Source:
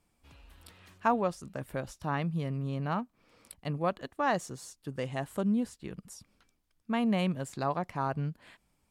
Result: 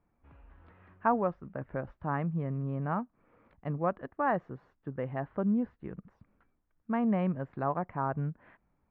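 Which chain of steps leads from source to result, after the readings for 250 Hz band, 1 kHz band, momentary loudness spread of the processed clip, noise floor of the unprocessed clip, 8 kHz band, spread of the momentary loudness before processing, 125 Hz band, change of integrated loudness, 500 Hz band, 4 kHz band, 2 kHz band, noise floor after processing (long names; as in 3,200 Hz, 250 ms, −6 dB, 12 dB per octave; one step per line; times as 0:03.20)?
0.0 dB, 0.0 dB, 14 LU, −75 dBFS, below −30 dB, 15 LU, 0.0 dB, 0.0 dB, 0.0 dB, below −15 dB, −2.5 dB, −76 dBFS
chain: low-pass filter 1,800 Hz 24 dB per octave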